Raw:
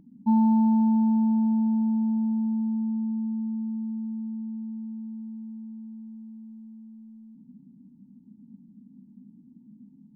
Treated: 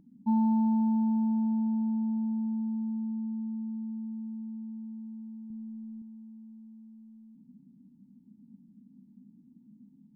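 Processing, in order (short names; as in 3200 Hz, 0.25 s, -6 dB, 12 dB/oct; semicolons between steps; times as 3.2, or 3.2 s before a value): 5.5–6.02 low shelf 150 Hz +11 dB; gain -5 dB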